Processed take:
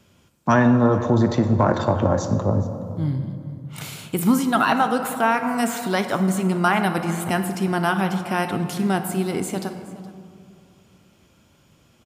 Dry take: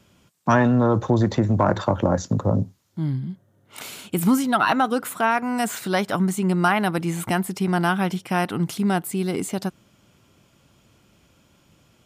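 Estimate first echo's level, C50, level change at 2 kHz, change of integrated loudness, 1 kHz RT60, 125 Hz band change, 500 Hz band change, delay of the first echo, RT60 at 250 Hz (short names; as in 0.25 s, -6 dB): -18.5 dB, 8.0 dB, +1.0 dB, +1.0 dB, 2.3 s, +0.5 dB, +1.5 dB, 0.42 s, 2.7 s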